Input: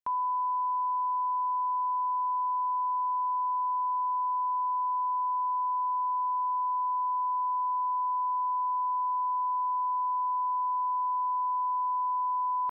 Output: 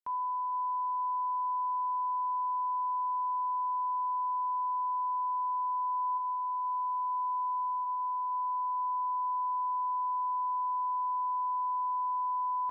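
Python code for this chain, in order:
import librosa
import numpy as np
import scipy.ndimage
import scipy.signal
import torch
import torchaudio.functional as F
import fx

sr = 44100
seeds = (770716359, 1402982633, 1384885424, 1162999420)

p1 = fx.steep_lowpass(x, sr, hz=1000.0, slope=36, at=(6.17, 7.84), fade=0.02)
p2 = fx.rider(p1, sr, range_db=10, speed_s=0.5)
p3 = p2 + fx.echo_feedback(p2, sr, ms=461, feedback_pct=42, wet_db=-18.0, dry=0)
p4 = fx.rev_gated(p3, sr, seeds[0], gate_ms=200, shape='falling', drr_db=9.0)
y = p4 * 10.0 ** (-7.0 / 20.0)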